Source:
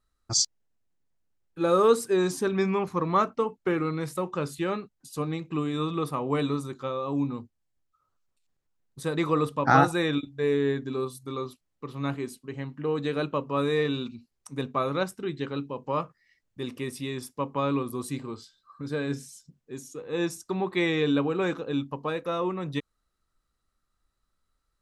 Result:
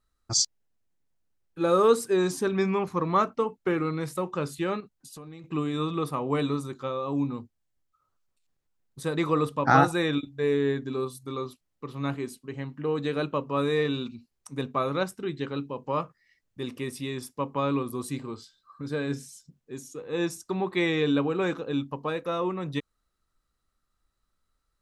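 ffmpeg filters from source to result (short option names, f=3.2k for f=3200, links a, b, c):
-filter_complex "[0:a]asettb=1/sr,asplit=3[a][b][c];[a]atrim=end=4.804[d];[b]atrim=start=4.8:end=5.44,asetpts=PTS-STARTPTS,afade=t=in:d=0.004:c=qsin,afade=t=out:st=0.636:d=0.004:c=qsin,acompressor=threshold=-41dB:ratio=6:attack=3.2:release=140:knee=1:detection=peak[e];[c]atrim=start=5.436[f];[d][e]acrossfade=d=0.004:c1=hsin:c2=qsin[g];[g][f]acrossfade=d=0.004:c1=qsin:c2=hsin"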